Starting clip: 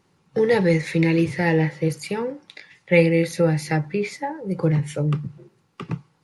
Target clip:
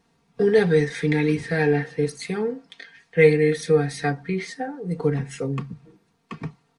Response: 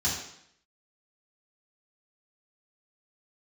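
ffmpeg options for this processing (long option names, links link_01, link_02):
-af "aecho=1:1:4:0.73,asetrate=40517,aresample=44100,volume=-2.5dB"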